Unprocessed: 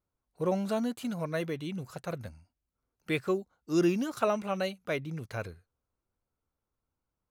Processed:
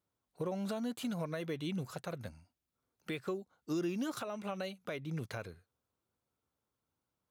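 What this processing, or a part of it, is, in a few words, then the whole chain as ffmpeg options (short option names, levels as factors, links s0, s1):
broadcast voice chain: -af "highpass=99,deesser=0.85,acompressor=threshold=0.0251:ratio=4,equalizer=f=3500:t=o:w=0.31:g=3.5,alimiter=level_in=1.68:limit=0.0631:level=0:latency=1:release=302,volume=0.596,volume=1.12"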